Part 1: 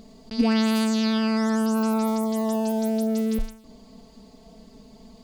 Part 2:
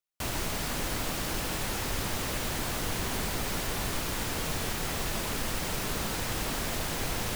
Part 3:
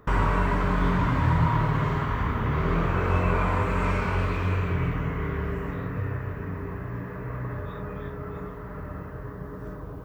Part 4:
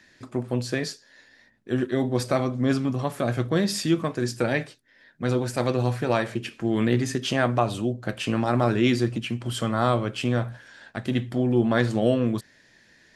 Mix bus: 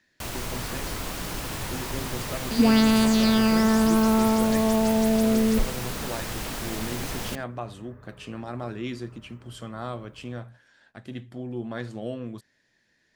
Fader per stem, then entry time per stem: +2.5, -1.0, -17.5, -12.0 dB; 2.20, 0.00, 0.35, 0.00 s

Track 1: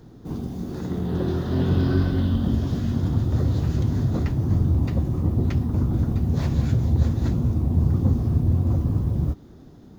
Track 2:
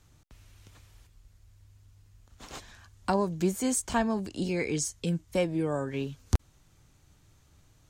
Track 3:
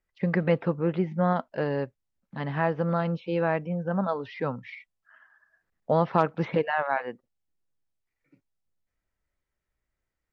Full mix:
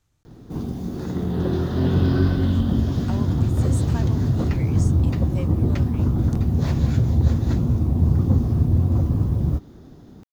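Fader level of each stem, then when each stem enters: +2.0 dB, -9.0 dB, off; 0.25 s, 0.00 s, off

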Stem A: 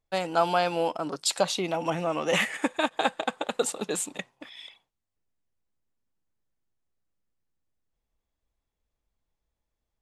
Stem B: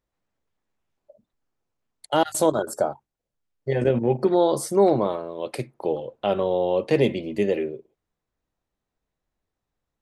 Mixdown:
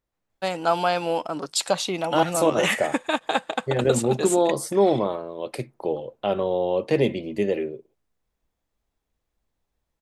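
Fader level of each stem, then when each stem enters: +2.0, -1.0 dB; 0.30, 0.00 s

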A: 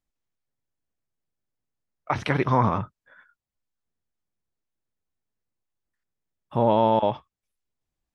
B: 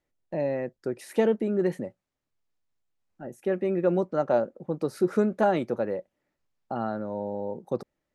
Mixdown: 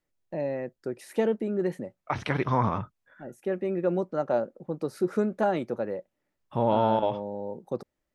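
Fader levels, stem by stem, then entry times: -4.0, -2.5 dB; 0.00, 0.00 s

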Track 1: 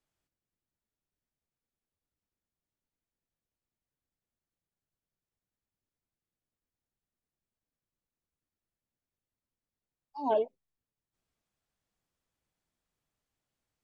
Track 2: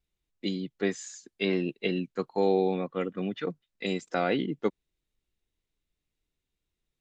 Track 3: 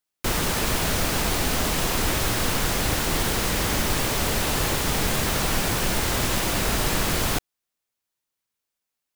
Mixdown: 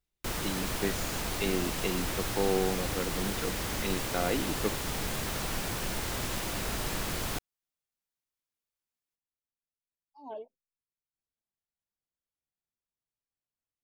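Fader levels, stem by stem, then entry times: -14.0, -4.0, -10.0 dB; 0.00, 0.00, 0.00 s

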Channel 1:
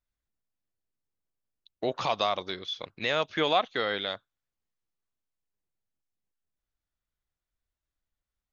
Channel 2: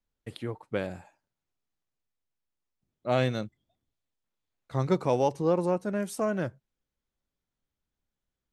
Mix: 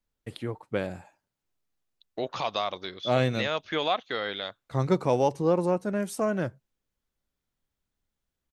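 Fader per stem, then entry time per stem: -2.0, +1.5 dB; 0.35, 0.00 s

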